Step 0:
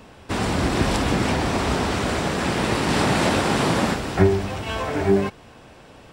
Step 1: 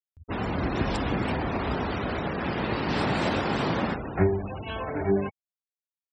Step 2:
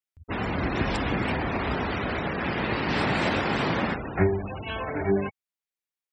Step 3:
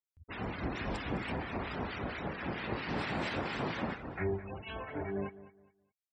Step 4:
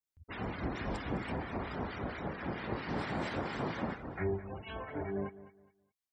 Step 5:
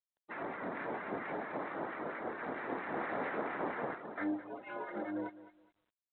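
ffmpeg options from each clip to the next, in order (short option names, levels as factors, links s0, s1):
-af "afftfilt=real='re*gte(hypot(re,im),0.0447)':imag='im*gte(hypot(re,im),0.0447)':win_size=1024:overlap=0.75,acompressor=mode=upward:threshold=0.0316:ratio=2.5,volume=0.501"
-af "equalizer=f=2100:w=1.3:g=5"
-filter_complex "[0:a]acrossover=split=1300[s0][s1];[s0]aeval=exprs='val(0)*(1-0.7/2+0.7/2*cos(2*PI*4.4*n/s))':c=same[s2];[s1]aeval=exprs='val(0)*(1-0.7/2-0.7/2*cos(2*PI*4.4*n/s))':c=same[s3];[s2][s3]amix=inputs=2:normalize=0,aecho=1:1:208|416|624:0.15|0.0419|0.0117,volume=0.447"
-af "bandreject=f=2600:w=17,adynamicequalizer=threshold=0.00158:dfrequency=3100:dqfactor=0.8:tfrequency=3100:tqfactor=0.8:attack=5:release=100:ratio=0.375:range=2.5:mode=cutabove:tftype=bell"
-af "highpass=f=370:t=q:w=0.5412,highpass=f=370:t=q:w=1.307,lowpass=f=2300:t=q:w=0.5176,lowpass=f=2300:t=q:w=0.7071,lowpass=f=2300:t=q:w=1.932,afreqshift=-87,volume=1.26" -ar 8000 -c:a adpcm_g726 -b:a 32k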